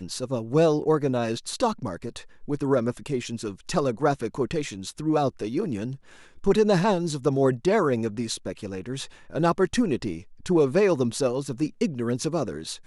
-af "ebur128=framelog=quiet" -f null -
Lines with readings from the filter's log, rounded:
Integrated loudness:
  I:         -25.6 LUFS
  Threshold: -35.8 LUFS
Loudness range:
  LRA:         3.2 LU
  Threshold: -45.9 LUFS
  LRA low:   -27.9 LUFS
  LRA high:  -24.6 LUFS